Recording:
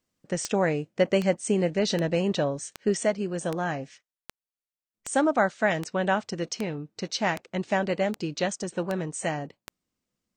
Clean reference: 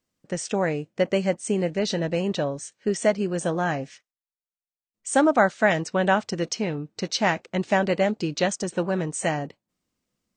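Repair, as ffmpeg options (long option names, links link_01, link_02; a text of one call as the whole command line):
ffmpeg -i in.wav -af "adeclick=threshold=4,asetnsamples=nb_out_samples=441:pad=0,asendcmd='3.03 volume volume 4dB',volume=0dB" out.wav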